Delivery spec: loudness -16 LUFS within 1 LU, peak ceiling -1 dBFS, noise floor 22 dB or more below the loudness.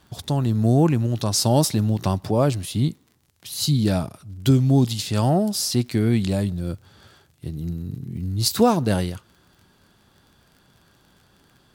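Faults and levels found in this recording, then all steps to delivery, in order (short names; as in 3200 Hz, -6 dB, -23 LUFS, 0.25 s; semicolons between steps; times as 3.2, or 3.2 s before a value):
ticks 36/s; loudness -21.5 LUFS; peak -5.5 dBFS; loudness target -16.0 LUFS
-> de-click; gain +5.5 dB; limiter -1 dBFS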